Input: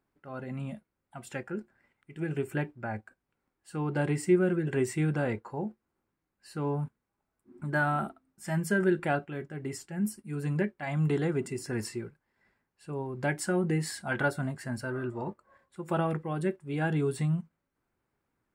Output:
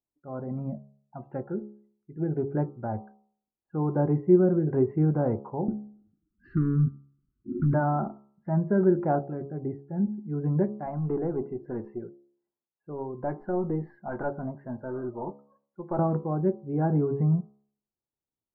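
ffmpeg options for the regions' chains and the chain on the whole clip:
-filter_complex "[0:a]asettb=1/sr,asplit=3[a][b][c];[a]atrim=end=5.684[d];[b]atrim=start=5.68:end=7.74,asetpts=PTS-STARTPTS,afade=t=in:d=0.004:c=qsin,afade=t=out:st=2.056:d=0.004:c=qsin,acompressor=threshold=-37dB:ratio=12:attack=3.2:release=140:knee=1:detection=peak,aeval=exprs='0.0708*sin(PI/2*5.01*val(0)/0.0708)':c=same,asuperstop=centerf=670:order=12:qfactor=0.8[e];[c]atrim=start=7.736[f];[d][e]acrossfade=d=0.004:c1=hsin:c2=qsin[g];[g][f]acrossfade=d=0.004:c1=qsin:c2=hsin,asettb=1/sr,asplit=3[h][i][j];[h]atrim=end=10.864[k];[i]atrim=start=10.86:end=15.99,asetpts=PTS-STARTPTS,afade=t=in:d=0.004:c=qsin,afade=t=out:st=5.126:d=0.004:c=qsin,highpass=f=280:p=1,aeval=exprs='(tanh(14.1*val(0)+0.3)-tanh(0.3))/14.1':c=same[l];[j]atrim=start=15.986[m];[k][l]acrossfade=d=0.004:c1=hsin:c2=qsin[n];[n][m]acrossfade=d=0.004:c1=qsin:c2=hsin,afftdn=nr=21:nf=-51,lowpass=f=1k:w=0.5412,lowpass=f=1k:w=1.3066,bandreject=f=69.92:t=h:w=4,bandreject=f=139.84:t=h:w=4,bandreject=f=209.76:t=h:w=4,bandreject=f=279.68:t=h:w=4,bandreject=f=349.6:t=h:w=4,bandreject=f=419.52:t=h:w=4,bandreject=f=489.44:t=h:w=4,bandreject=f=559.36:t=h:w=4,bandreject=f=629.28:t=h:w=4,bandreject=f=699.2:t=h:w=4,bandreject=f=769.12:t=h:w=4,bandreject=f=839.04:t=h:w=4,bandreject=f=908.96:t=h:w=4,bandreject=f=978.88:t=h:w=4,bandreject=f=1.0488k:t=h:w=4,bandreject=f=1.11872k:t=h:w=4,bandreject=f=1.18864k:t=h:w=4,bandreject=f=1.25856k:t=h:w=4,bandreject=f=1.32848k:t=h:w=4,volume=5dB"

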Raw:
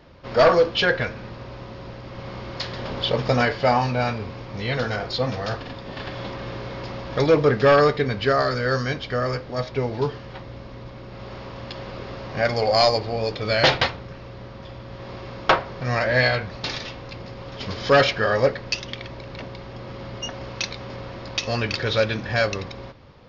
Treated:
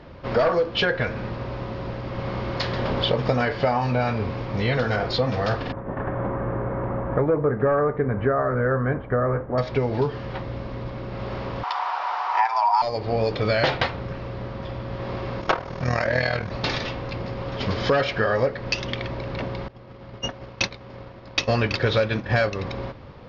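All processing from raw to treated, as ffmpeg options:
-filter_complex "[0:a]asettb=1/sr,asplit=3[a][b][c];[a]atrim=end=5.724[d];[b]atrim=start=5.72:end=9.58,asetpts=PTS-STARTPTS,afade=t=in:d=0.004:c=qsin,afade=t=out:st=3.856:d=0.004:c=qsin,lowpass=f=1.6k:w=0.5412,lowpass=f=1.6k:w=1.3066,agate=range=-33dB:threshold=-35dB:ratio=3:release=100:detection=peak[e];[c]atrim=start=9.576[f];[d][e]acrossfade=d=0.004:c1=hsin:c2=qsin[g];[g][f]acrossfade=d=0.004:c1=qsin:c2=hsin,asettb=1/sr,asplit=3[h][i][j];[h]atrim=end=11.634[k];[i]atrim=start=11.63:end=12.82,asetpts=PTS-STARTPTS,afade=t=in:d=0.004:c=qsin,afade=t=out:st=1.186:d=0.004:c=qsin,highpass=f=770:t=q:w=6,afreqshift=190[l];[j]atrim=start=12.816[m];[k][l]acrossfade=d=0.004:c1=hsin:c2=qsin[n];[n][m]acrossfade=d=0.004:c1=qsin:c2=hsin,asettb=1/sr,asplit=3[o][p][q];[o]atrim=end=15.414[r];[p]atrim=start=15.41:end=16.51,asetpts=PTS-STARTPTS,afade=t=in:d=0.004:c=qsin,afade=t=out:st=1.096:d=0.004:c=qsin,equalizer=f=6.3k:t=o:w=0.56:g=10.5,tremolo=f=40:d=0.75[s];[q]atrim=start=16.506[t];[r][s]acrossfade=d=0.004:c1=hsin:c2=qsin[u];[u][t]acrossfade=d=0.004:c1=qsin:c2=hsin,asettb=1/sr,asplit=3[v][w][x];[v]atrim=end=19.684[y];[w]atrim=start=19.68:end=22.5,asetpts=PTS-STARTPTS,afade=t=in:d=0.004:c=qsin,afade=t=out:st=2.816:d=0.004:c=qsin,agate=range=-33dB:threshold=-24dB:ratio=3:release=100:detection=peak,acontrast=52[z];[x]atrim=start=22.496[aa];[y][z]acrossfade=d=0.004:c1=hsin:c2=qsin[ab];[ab][aa]acrossfade=d=0.004:c1=qsin:c2=hsin,lowpass=f=2.4k:p=1,acompressor=threshold=-25dB:ratio=6,volume=6.5dB"

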